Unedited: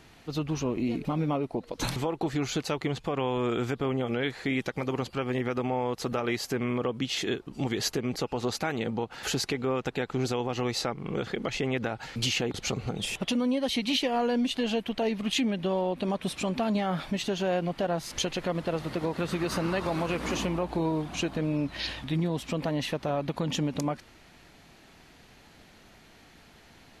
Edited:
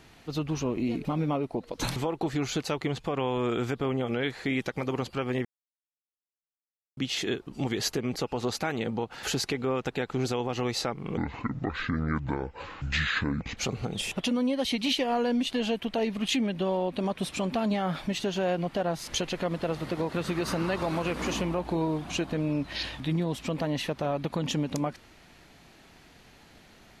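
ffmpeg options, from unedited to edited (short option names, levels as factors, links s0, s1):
-filter_complex "[0:a]asplit=5[s0][s1][s2][s3][s4];[s0]atrim=end=5.45,asetpts=PTS-STARTPTS,afade=t=out:st=5.446:d=0.004:c=hsin[s5];[s1]atrim=start=5.45:end=6.97,asetpts=PTS-STARTPTS,volume=0[s6];[s2]atrim=start=6.97:end=11.174,asetpts=PTS-STARTPTS,afade=t=in:d=0.004:c=hsin[s7];[s3]atrim=start=11.17:end=12.61,asetpts=PTS-STARTPTS,asetrate=26460,aresample=44100[s8];[s4]atrim=start=12.606[s9];[s5][s6][s7]concat=n=3:v=0:a=1[s10];[s10][s8]acrossfade=d=0.004:c1=hsin:c2=hsin[s11];[s11][s9]acrossfade=d=0.004:c1=hsin:c2=hsin"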